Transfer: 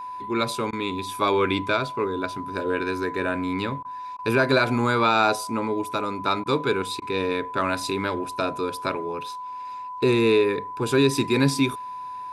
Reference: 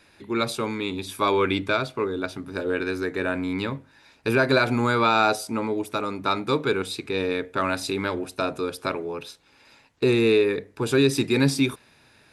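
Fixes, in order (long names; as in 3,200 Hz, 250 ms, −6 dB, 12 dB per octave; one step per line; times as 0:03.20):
notch filter 1,000 Hz, Q 30
repair the gap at 0:00.71/0:03.83/0:04.17/0:06.44/0:07.00, 17 ms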